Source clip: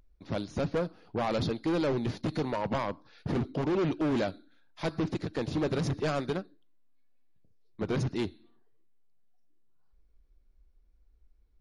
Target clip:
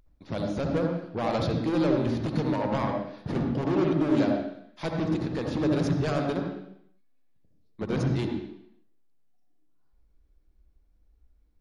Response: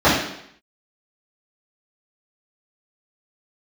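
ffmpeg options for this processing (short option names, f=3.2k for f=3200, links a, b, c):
-filter_complex "[0:a]asplit=2[a][b];[1:a]atrim=start_sample=2205,adelay=61[c];[b][c]afir=irnorm=-1:irlink=0,volume=-27.5dB[d];[a][d]amix=inputs=2:normalize=0"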